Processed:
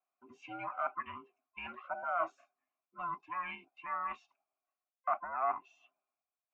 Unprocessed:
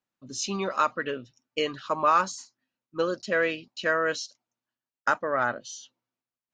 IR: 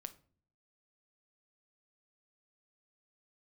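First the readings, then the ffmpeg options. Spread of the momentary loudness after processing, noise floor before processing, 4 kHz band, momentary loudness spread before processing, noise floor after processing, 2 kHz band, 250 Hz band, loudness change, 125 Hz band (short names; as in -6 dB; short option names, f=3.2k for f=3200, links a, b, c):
14 LU, under -85 dBFS, -22.0 dB, 14 LU, under -85 dBFS, -15.0 dB, -20.0 dB, -11.0 dB, -19.5 dB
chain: -filter_complex "[0:a]afftfilt=real='real(if(between(b,1,1008),(2*floor((b-1)/24)+1)*24-b,b),0)':imag='imag(if(between(b,1,1008),(2*floor((b-1)/24)+1)*24-b,b),0)*if(between(b,1,1008),-1,1)':win_size=2048:overlap=0.75,areverse,acompressor=threshold=-30dB:ratio=12,areverse,asplit=3[a][b][c];[a]bandpass=f=730:t=q:w=8,volume=0dB[d];[b]bandpass=f=1.09k:t=q:w=8,volume=-6dB[e];[c]bandpass=f=2.44k:t=q:w=8,volume=-9dB[f];[d][e][f]amix=inputs=3:normalize=0,highshelf=f=3k:t=q:w=3:g=-13.5,volume=7.5dB"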